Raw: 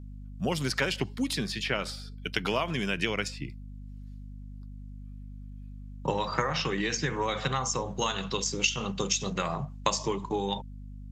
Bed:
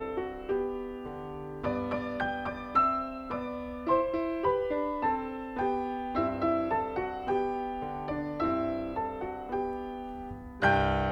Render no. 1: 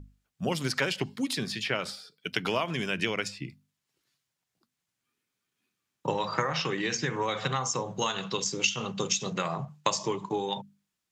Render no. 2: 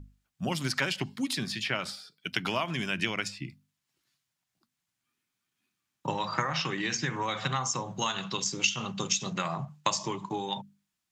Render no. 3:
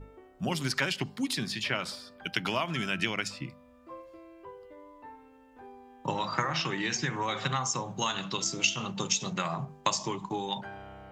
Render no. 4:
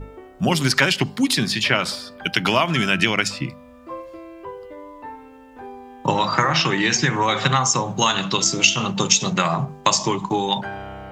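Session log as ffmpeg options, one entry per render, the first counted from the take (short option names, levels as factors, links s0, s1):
-af "bandreject=f=50:t=h:w=6,bandreject=f=100:t=h:w=6,bandreject=f=150:t=h:w=6,bandreject=f=200:t=h:w=6,bandreject=f=250:t=h:w=6"
-af "equalizer=f=460:t=o:w=0.5:g=-9"
-filter_complex "[1:a]volume=0.106[s0];[0:a][s0]amix=inputs=2:normalize=0"
-af "volume=3.98,alimiter=limit=0.891:level=0:latency=1"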